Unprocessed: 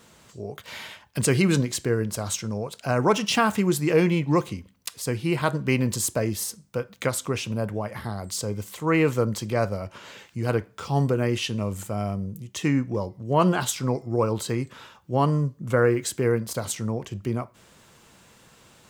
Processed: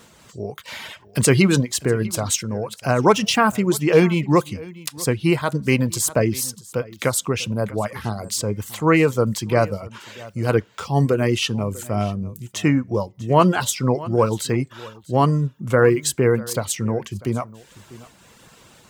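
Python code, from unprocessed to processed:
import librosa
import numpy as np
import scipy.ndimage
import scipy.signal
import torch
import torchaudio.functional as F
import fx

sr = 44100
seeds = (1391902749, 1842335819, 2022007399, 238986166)

y = fx.dereverb_blind(x, sr, rt60_s=0.57)
y = y + 10.0 ** (-20.5 / 20.0) * np.pad(y, (int(645 * sr / 1000.0), 0))[:len(y)]
y = fx.am_noise(y, sr, seeds[0], hz=5.7, depth_pct=60)
y = y * librosa.db_to_amplitude(8.5)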